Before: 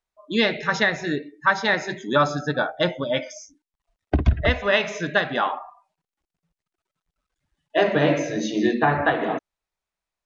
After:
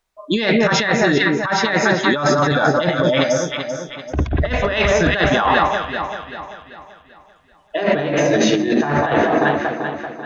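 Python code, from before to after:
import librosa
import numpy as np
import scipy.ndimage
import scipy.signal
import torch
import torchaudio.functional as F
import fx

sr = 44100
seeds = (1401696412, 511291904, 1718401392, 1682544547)

y = fx.echo_alternate(x, sr, ms=194, hz=1400.0, feedback_pct=65, wet_db=-6.0)
y = fx.over_compress(y, sr, threshold_db=-25.0, ratio=-1.0)
y = y * 10.0 ** (8.5 / 20.0)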